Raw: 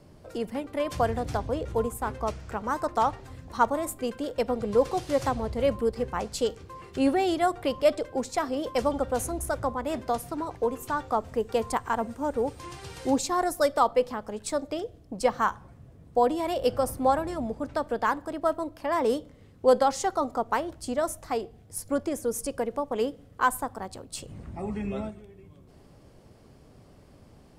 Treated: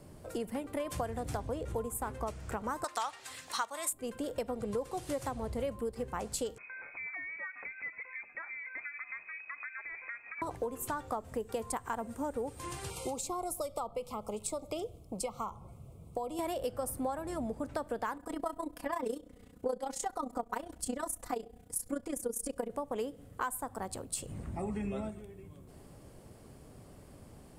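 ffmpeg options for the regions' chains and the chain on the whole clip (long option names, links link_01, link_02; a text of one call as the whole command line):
ffmpeg -i in.wav -filter_complex "[0:a]asettb=1/sr,asplit=3[link_01][link_02][link_03];[link_01]atrim=end=2.844[link_04];[link_02]atrim=start=2.84:end=3.93,asetpts=PTS-STARTPTS,afade=type=in:duration=0.004:curve=qsin,afade=type=out:start_time=1.086:duration=0.004:curve=qsin,highpass=frequency=1100:poles=1,equalizer=frequency=4100:width=0.32:gain=14.5[link_05];[link_03]atrim=start=3.926[link_06];[link_04][link_05]acrossfade=duration=0.004:curve1=hsin:curve2=qsin[link_07];[link_07][link_06]acrossfade=duration=0.004:curve1=qsin:curve2=hsin,asettb=1/sr,asplit=3[link_08][link_09][link_10];[link_08]atrim=end=6.584[link_11];[link_09]atrim=start=6.58:end=10.42,asetpts=PTS-STARTPTS,afade=type=in:duration=0.004:curve=qsin,afade=type=out:start_time=3.836:duration=0.004:curve=qsin,tiltshelf=frequency=810:gain=-3.5,acompressor=threshold=-41dB:ratio=4:attack=3.2:release=140:knee=1:detection=peak,lowpass=frequency=2200:width_type=q:width=0.5098,lowpass=frequency=2200:width_type=q:width=0.6013,lowpass=frequency=2200:width_type=q:width=0.9,lowpass=frequency=2200:width_type=q:width=2.563,afreqshift=-2600[link_12];[link_10]atrim=start=10.416[link_13];[link_11][link_12]acrossfade=duration=0.004:curve1=hsin:curve2=qsin[link_14];[link_14][link_13]acrossfade=duration=0.004:curve1=qsin:curve2=hsin,asettb=1/sr,asplit=3[link_15][link_16][link_17];[link_15]atrim=end=12.904[link_18];[link_16]atrim=start=12.9:end=16.39,asetpts=PTS-STARTPTS,afade=type=in:duration=0.004:curve=qsin,afade=type=out:start_time=3.486:duration=0.004:curve=qsin,equalizer=frequency=270:width_type=o:width=0.32:gain=-8.5,acrossover=split=210|880[link_19][link_20][link_21];[link_19]acompressor=threshold=-46dB:ratio=4[link_22];[link_20]acompressor=threshold=-34dB:ratio=4[link_23];[link_21]acompressor=threshold=-39dB:ratio=4[link_24];[link_22][link_23][link_24]amix=inputs=3:normalize=0,asuperstop=centerf=1700:order=12:qfactor=2.4[link_25];[link_17]atrim=start=16.386[link_26];[link_18][link_25]acrossfade=duration=0.004:curve1=hsin:curve2=qsin[link_27];[link_27][link_26]acrossfade=duration=0.004:curve1=qsin:curve2=hsin,asettb=1/sr,asplit=3[link_28][link_29][link_30];[link_28]atrim=end=18.174[link_31];[link_29]atrim=start=18.17:end=22.71,asetpts=PTS-STARTPTS,afade=type=in:duration=0.004:curve=qsin,afade=type=out:start_time=4.536:duration=0.004:curve=qsin,aecho=1:1:4.1:0.88,atrim=end_sample=200214,tremolo=f=30:d=0.788[link_32];[link_30]atrim=start=22.706[link_33];[link_31][link_32]acrossfade=duration=0.004:curve1=hsin:curve2=qsin[link_34];[link_34][link_33]acrossfade=duration=0.004:curve1=qsin:curve2=hsin,highshelf=frequency=6800:width_type=q:width=1.5:gain=6,acompressor=threshold=-33dB:ratio=6" out.wav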